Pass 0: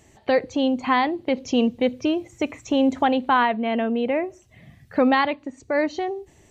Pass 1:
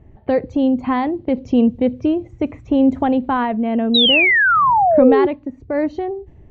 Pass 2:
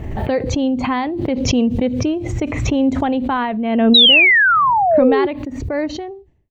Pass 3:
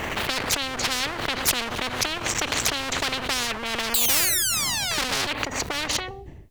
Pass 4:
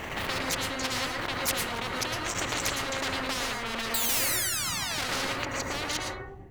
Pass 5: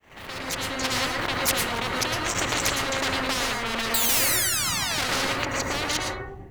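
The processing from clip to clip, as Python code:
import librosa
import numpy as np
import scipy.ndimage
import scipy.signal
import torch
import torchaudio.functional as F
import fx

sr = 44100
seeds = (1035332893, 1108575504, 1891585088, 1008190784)

y1 = fx.env_lowpass(x, sr, base_hz=2200.0, full_db=-18.5)
y1 = fx.tilt_eq(y1, sr, slope=-4.0)
y1 = fx.spec_paint(y1, sr, seeds[0], shape='fall', start_s=3.94, length_s=1.33, low_hz=350.0, high_hz=4000.0, level_db=-12.0)
y1 = y1 * 10.0 ** (-1.5 / 20.0)
y2 = fx.fade_out_tail(y1, sr, length_s=0.69)
y2 = fx.high_shelf(y2, sr, hz=2000.0, db=10.0)
y2 = fx.pre_swell(y2, sr, db_per_s=38.0)
y2 = y2 * 10.0 ** (-2.5 / 20.0)
y3 = fx.clip_asym(y2, sr, top_db=-25.0, bottom_db=-5.0)
y3 = fx.spectral_comp(y3, sr, ratio=10.0)
y4 = fx.rev_plate(y3, sr, seeds[1], rt60_s=0.6, hf_ratio=0.25, predelay_ms=100, drr_db=-1.0)
y4 = y4 * 10.0 ** (-7.5 / 20.0)
y5 = fx.fade_in_head(y4, sr, length_s=0.94)
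y5 = y5 * 10.0 ** (5.0 / 20.0)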